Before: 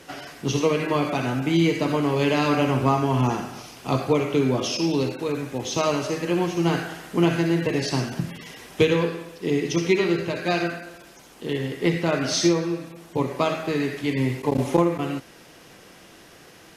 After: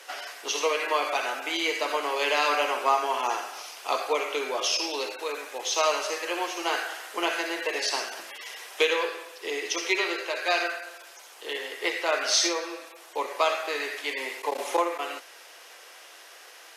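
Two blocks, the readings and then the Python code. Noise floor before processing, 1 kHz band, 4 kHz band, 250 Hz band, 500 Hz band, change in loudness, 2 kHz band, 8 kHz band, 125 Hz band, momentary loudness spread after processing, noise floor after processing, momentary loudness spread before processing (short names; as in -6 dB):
-49 dBFS, +0.5 dB, +2.5 dB, -17.0 dB, -5.5 dB, -4.0 dB, +2.0 dB, +2.5 dB, under -40 dB, 16 LU, -49 dBFS, 10 LU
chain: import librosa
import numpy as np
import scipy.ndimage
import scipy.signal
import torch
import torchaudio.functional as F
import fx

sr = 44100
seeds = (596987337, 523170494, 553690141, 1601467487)

y = scipy.signal.sosfilt(scipy.signal.bessel(6, 730.0, 'highpass', norm='mag', fs=sr, output='sos'), x)
y = F.gain(torch.from_numpy(y), 2.5).numpy()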